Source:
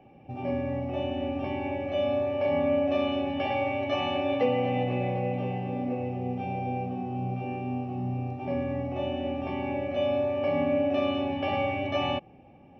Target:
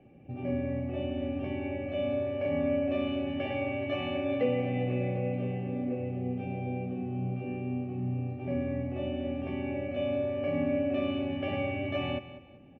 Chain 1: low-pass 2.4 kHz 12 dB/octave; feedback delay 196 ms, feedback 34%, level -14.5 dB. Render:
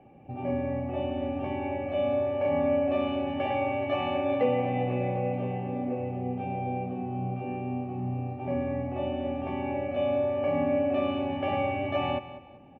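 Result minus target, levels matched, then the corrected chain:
1 kHz band +7.5 dB
low-pass 2.4 kHz 12 dB/octave; peaking EQ 910 Hz -14 dB 0.81 oct; feedback delay 196 ms, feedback 34%, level -14.5 dB

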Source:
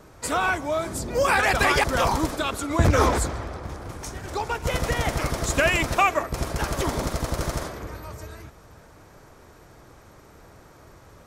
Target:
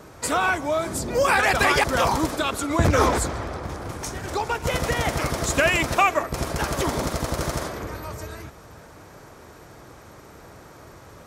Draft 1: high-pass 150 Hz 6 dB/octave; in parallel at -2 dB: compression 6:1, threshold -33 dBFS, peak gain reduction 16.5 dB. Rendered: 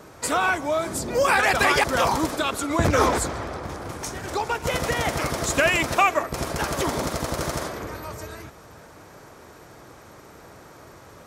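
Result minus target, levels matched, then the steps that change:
125 Hz band -2.5 dB
change: high-pass 74 Hz 6 dB/octave

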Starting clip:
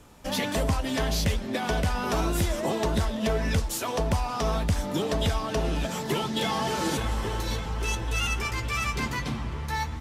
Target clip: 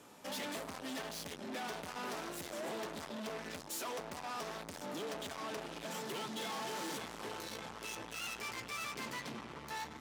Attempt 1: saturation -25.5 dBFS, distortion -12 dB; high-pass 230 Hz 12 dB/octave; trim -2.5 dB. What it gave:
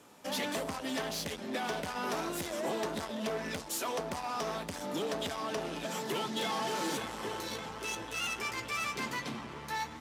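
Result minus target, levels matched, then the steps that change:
saturation: distortion -7 dB
change: saturation -36 dBFS, distortion -5 dB

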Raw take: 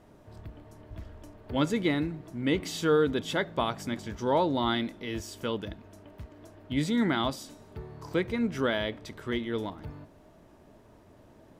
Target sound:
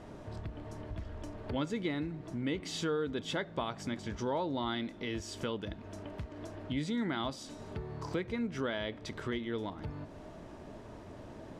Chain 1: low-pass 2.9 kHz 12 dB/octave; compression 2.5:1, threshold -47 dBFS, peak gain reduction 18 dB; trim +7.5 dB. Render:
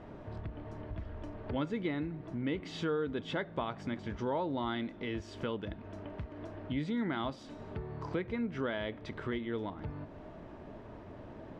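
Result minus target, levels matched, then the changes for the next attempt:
8 kHz band -12.5 dB
change: low-pass 7.7 kHz 12 dB/octave

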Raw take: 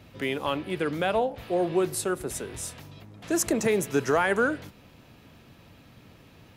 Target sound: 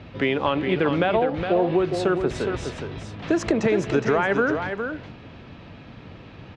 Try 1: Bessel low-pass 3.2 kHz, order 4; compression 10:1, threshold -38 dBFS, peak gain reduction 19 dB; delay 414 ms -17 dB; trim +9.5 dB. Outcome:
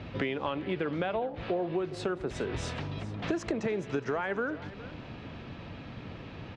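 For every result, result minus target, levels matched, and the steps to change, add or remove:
compression: peak gain reduction +10.5 dB; echo-to-direct -10 dB
change: compression 10:1, threshold -26.5 dBFS, peak gain reduction 8.5 dB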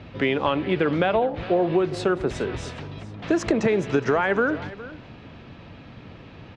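echo-to-direct -10 dB
change: delay 414 ms -7 dB

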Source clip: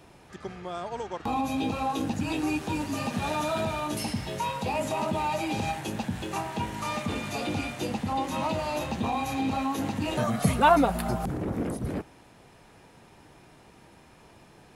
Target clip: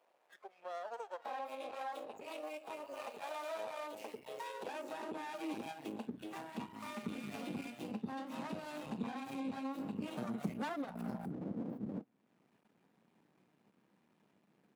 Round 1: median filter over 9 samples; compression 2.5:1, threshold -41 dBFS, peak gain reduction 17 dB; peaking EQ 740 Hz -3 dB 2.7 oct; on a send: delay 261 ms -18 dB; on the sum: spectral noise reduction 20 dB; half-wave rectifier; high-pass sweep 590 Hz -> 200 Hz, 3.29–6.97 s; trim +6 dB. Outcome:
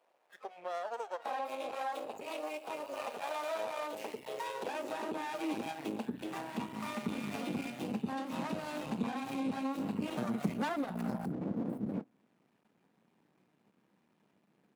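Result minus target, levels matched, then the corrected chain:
compression: peak gain reduction -5 dB
median filter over 9 samples; compression 2.5:1, threshold -49.5 dBFS, peak gain reduction 22 dB; peaking EQ 740 Hz -3 dB 2.7 oct; on a send: delay 261 ms -18 dB; on the sum: spectral noise reduction 20 dB; half-wave rectifier; high-pass sweep 590 Hz -> 200 Hz, 3.29–6.97 s; trim +6 dB

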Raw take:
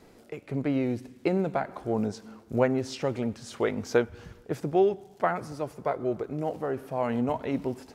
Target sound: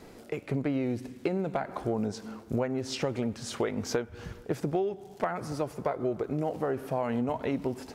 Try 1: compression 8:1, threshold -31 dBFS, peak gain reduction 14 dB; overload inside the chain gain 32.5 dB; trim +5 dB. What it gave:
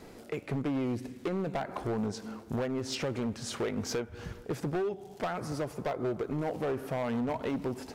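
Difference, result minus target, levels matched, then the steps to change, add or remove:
overload inside the chain: distortion +21 dB
change: overload inside the chain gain 23 dB

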